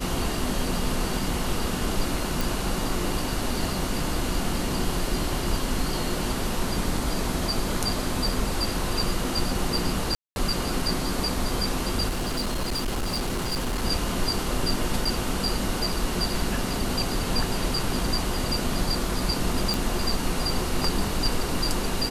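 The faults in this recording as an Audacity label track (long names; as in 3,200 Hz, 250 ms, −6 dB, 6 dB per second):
2.410000	2.410000	click
10.150000	10.360000	drop-out 211 ms
12.080000	13.840000	clipping −23.5 dBFS
15.050000	15.050000	drop-out 3.9 ms
19.740000	19.740000	click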